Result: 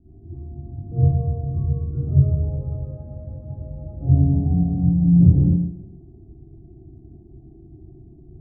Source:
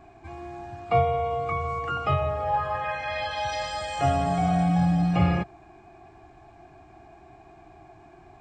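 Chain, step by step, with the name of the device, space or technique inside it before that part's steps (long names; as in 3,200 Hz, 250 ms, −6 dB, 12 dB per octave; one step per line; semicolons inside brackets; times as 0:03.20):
next room (low-pass filter 290 Hz 24 dB per octave; convolution reverb RT60 0.85 s, pre-delay 41 ms, DRR −12 dB)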